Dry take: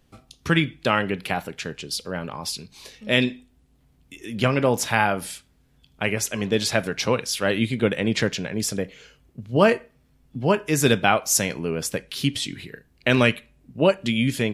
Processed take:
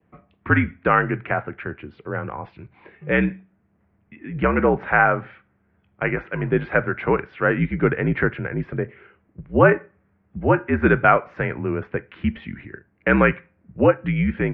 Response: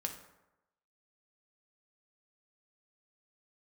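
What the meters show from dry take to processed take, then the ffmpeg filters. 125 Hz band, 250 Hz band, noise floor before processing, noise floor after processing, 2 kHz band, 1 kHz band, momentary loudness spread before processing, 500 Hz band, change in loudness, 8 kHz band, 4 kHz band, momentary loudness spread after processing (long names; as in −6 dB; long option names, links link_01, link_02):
+2.5 dB, +1.5 dB, −61 dBFS, −65 dBFS, +3.5 dB, +4.0 dB, 15 LU, +2.0 dB, +2.0 dB, below −40 dB, below −15 dB, 17 LU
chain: -af "adynamicequalizer=threshold=0.0126:dfrequency=1500:dqfactor=3.2:tfrequency=1500:tqfactor=3.2:attack=5:release=100:ratio=0.375:range=3:mode=boostabove:tftype=bell,highpass=frequency=150:width_type=q:width=0.5412,highpass=frequency=150:width_type=q:width=1.307,lowpass=frequency=2200:width_type=q:width=0.5176,lowpass=frequency=2200:width_type=q:width=0.7071,lowpass=frequency=2200:width_type=q:width=1.932,afreqshift=-61,volume=2.5dB"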